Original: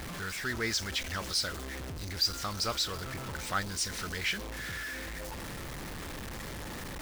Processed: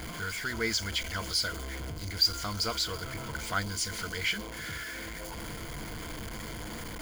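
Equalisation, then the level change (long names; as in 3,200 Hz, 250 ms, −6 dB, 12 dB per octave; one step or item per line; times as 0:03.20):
EQ curve with evenly spaced ripples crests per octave 1.8, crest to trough 9 dB
0.0 dB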